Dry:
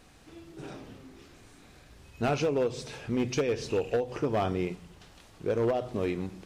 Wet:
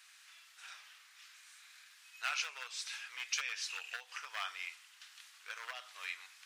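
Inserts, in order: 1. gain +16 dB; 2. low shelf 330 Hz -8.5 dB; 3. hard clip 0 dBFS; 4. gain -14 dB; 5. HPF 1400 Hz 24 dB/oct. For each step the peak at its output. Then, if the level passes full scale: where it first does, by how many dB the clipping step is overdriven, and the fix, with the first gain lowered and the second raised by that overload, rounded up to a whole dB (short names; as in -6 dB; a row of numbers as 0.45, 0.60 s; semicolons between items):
-5.0, -2.5, -2.5, -16.5, -21.0 dBFS; no overload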